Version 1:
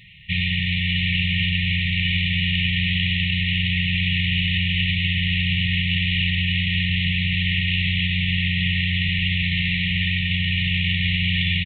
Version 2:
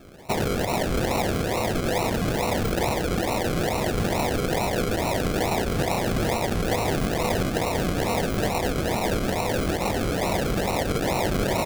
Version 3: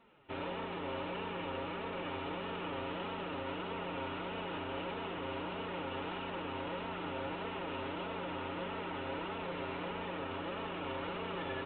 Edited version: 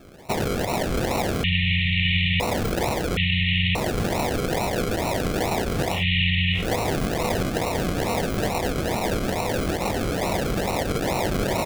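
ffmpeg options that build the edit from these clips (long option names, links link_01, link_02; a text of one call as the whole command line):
ffmpeg -i take0.wav -i take1.wav -filter_complex "[0:a]asplit=3[link_01][link_02][link_03];[1:a]asplit=4[link_04][link_05][link_06][link_07];[link_04]atrim=end=1.442[link_08];[link_01]atrim=start=1.438:end=2.402[link_09];[link_05]atrim=start=2.398:end=3.172[link_10];[link_02]atrim=start=3.168:end=3.752[link_11];[link_06]atrim=start=3.748:end=6.05[link_12];[link_03]atrim=start=5.89:end=6.68[link_13];[link_07]atrim=start=6.52[link_14];[link_08][link_09]acrossfade=duration=0.004:curve1=hsin:curve2=hsin[link_15];[link_15][link_10]acrossfade=duration=0.004:curve1=hsin:curve2=hsin[link_16];[link_16][link_11]acrossfade=duration=0.004:curve1=hsin:curve2=hsin[link_17];[link_17][link_12]acrossfade=duration=0.004:curve1=hsin:curve2=hsin[link_18];[link_18][link_13]acrossfade=duration=0.16:curve1=tri:curve2=tri[link_19];[link_19][link_14]acrossfade=duration=0.16:curve1=tri:curve2=tri" out.wav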